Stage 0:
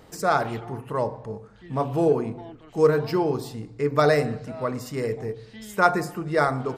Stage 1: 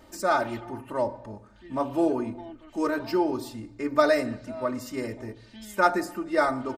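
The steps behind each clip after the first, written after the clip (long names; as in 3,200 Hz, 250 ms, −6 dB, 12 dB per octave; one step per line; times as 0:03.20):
comb filter 3.3 ms, depth 96%
level −4.5 dB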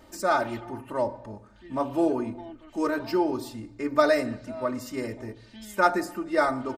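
no processing that can be heard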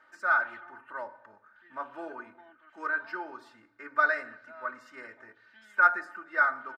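resonant band-pass 1,500 Hz, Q 5.8
level +7.5 dB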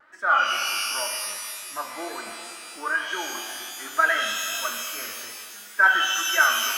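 tape wow and flutter 130 cents
reverb with rising layers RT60 2.2 s, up +12 semitones, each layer −2 dB, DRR 4 dB
level +4 dB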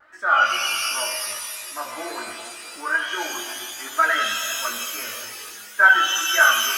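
multi-voice chorus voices 6, 0.38 Hz, delay 18 ms, depth 1.7 ms
level +5.5 dB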